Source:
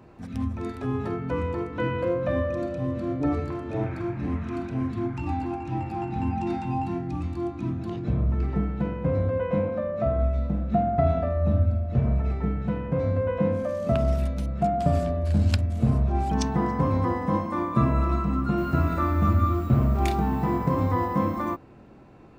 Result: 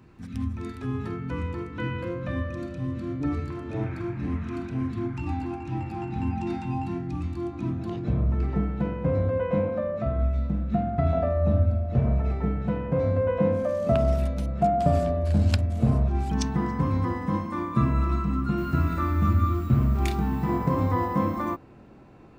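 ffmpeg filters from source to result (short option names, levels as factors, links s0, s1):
-af "asetnsamples=n=441:p=0,asendcmd='3.57 equalizer g -6;7.53 equalizer g 0.5;9.98 equalizer g -6;11.13 equalizer g 2.5;16.08 equalizer g -8.5;20.49 equalizer g -1',equalizer=f=630:t=o:w=1.2:g=-12"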